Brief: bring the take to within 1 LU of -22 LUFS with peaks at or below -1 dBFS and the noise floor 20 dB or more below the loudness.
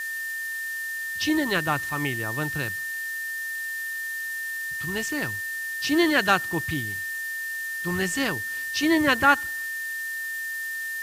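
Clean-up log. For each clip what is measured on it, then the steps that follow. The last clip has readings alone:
steady tone 1.8 kHz; tone level -29 dBFS; noise floor -32 dBFS; noise floor target -46 dBFS; loudness -26.0 LUFS; peak level -6.5 dBFS; loudness target -22.0 LUFS
-> band-stop 1.8 kHz, Q 30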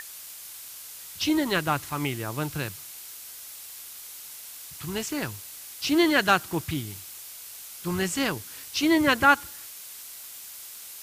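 steady tone not found; noise floor -43 dBFS; noise floor target -46 dBFS
-> noise reduction 6 dB, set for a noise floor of -43 dBFS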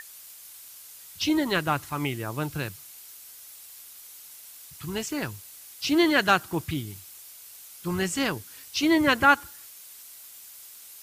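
noise floor -47 dBFS; loudness -25.5 LUFS; peak level -7.0 dBFS; loudness target -22.0 LUFS
-> trim +3.5 dB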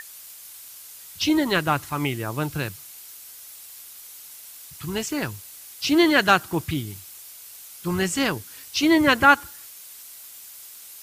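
loudness -22.0 LUFS; peak level -3.5 dBFS; noise floor -43 dBFS

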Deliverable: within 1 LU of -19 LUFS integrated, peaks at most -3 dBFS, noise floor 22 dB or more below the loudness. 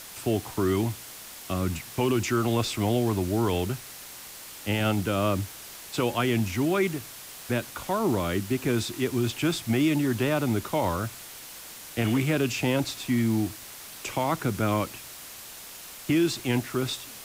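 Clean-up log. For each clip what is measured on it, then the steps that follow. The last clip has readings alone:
noise floor -43 dBFS; noise floor target -49 dBFS; loudness -27.0 LUFS; peak level -14.0 dBFS; loudness target -19.0 LUFS
-> noise reduction 6 dB, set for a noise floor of -43 dBFS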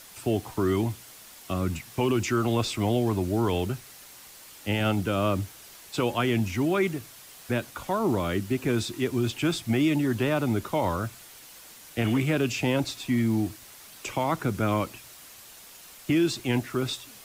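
noise floor -48 dBFS; noise floor target -50 dBFS
-> noise reduction 6 dB, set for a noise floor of -48 dBFS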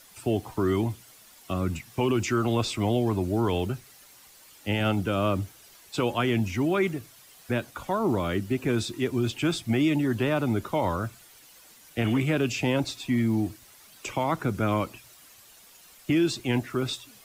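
noise floor -53 dBFS; loudness -27.5 LUFS; peak level -14.5 dBFS; loudness target -19.0 LUFS
-> trim +8.5 dB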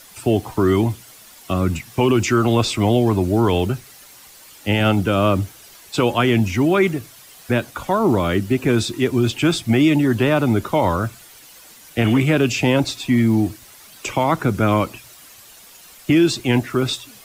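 loudness -19.0 LUFS; peak level -6.0 dBFS; noise floor -45 dBFS

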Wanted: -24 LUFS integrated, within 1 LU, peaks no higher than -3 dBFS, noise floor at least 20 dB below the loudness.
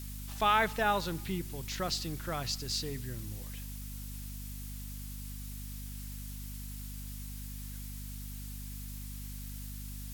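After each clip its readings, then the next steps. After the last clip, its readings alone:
hum 50 Hz; highest harmonic 250 Hz; hum level -40 dBFS; noise floor -42 dBFS; noise floor target -57 dBFS; loudness -37.0 LUFS; peak level -14.0 dBFS; loudness target -24.0 LUFS
-> de-hum 50 Hz, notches 5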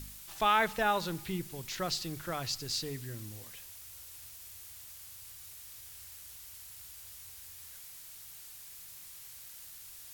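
hum not found; noise floor -50 dBFS; noise floor target -58 dBFS
-> noise reduction 8 dB, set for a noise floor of -50 dBFS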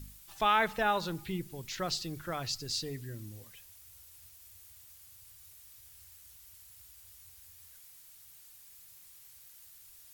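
noise floor -56 dBFS; loudness -33.0 LUFS; peak level -14.0 dBFS; loudness target -24.0 LUFS
-> trim +9 dB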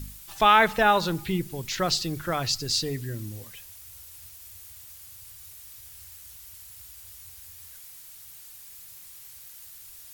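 loudness -24.0 LUFS; peak level -5.0 dBFS; noise floor -47 dBFS

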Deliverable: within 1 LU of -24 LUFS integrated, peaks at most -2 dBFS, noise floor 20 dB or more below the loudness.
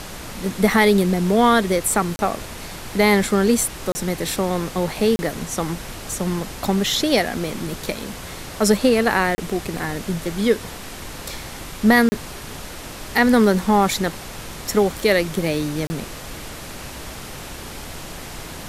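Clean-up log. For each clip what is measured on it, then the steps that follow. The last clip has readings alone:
dropouts 6; longest dropout 30 ms; noise floor -35 dBFS; noise floor target -40 dBFS; loudness -20.0 LUFS; peak level -4.0 dBFS; loudness target -24.0 LUFS
-> interpolate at 2.16/3.92/5.16/9.35/12.09/15.87 s, 30 ms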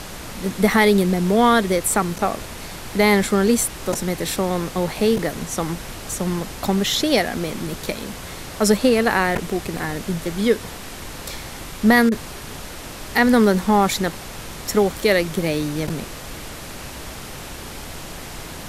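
dropouts 0; noise floor -35 dBFS; noise floor target -40 dBFS
-> noise print and reduce 6 dB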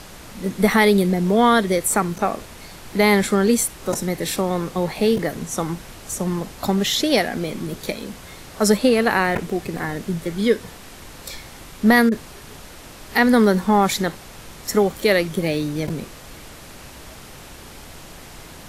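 noise floor -41 dBFS; loudness -20.0 LUFS; peak level -4.0 dBFS; loudness target -24.0 LUFS
-> trim -4 dB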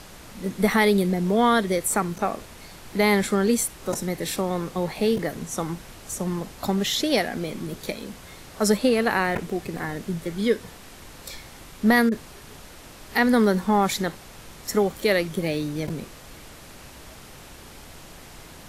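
loudness -24.0 LUFS; peak level -8.0 dBFS; noise floor -45 dBFS

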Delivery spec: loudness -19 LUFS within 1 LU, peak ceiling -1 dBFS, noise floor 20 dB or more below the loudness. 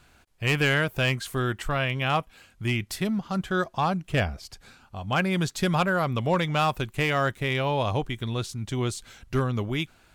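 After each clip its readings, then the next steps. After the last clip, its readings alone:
clipped samples 0.4%; clipping level -15.5 dBFS; loudness -26.5 LUFS; peak level -15.5 dBFS; loudness target -19.0 LUFS
-> clip repair -15.5 dBFS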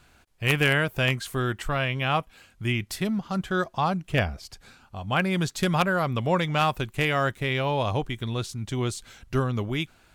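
clipped samples 0.0%; loudness -26.5 LUFS; peak level -6.5 dBFS; loudness target -19.0 LUFS
-> trim +7.5 dB; peak limiter -1 dBFS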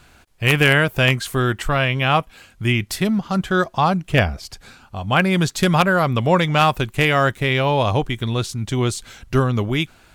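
loudness -19.0 LUFS; peak level -1.0 dBFS; noise floor -52 dBFS

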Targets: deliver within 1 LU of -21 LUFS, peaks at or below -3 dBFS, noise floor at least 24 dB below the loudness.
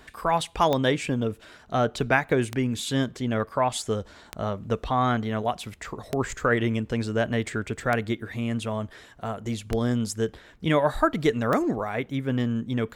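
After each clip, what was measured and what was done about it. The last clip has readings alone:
clicks found 7; loudness -26.5 LUFS; peak level -6.0 dBFS; loudness target -21.0 LUFS
-> de-click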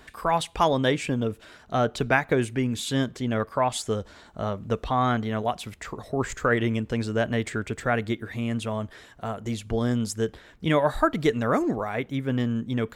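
clicks found 0; loudness -26.5 LUFS; peak level -6.0 dBFS; loudness target -21.0 LUFS
-> trim +5.5 dB; peak limiter -3 dBFS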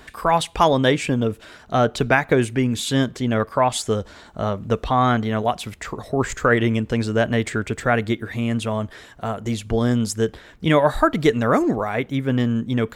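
loudness -21.0 LUFS; peak level -3.0 dBFS; noise floor -46 dBFS

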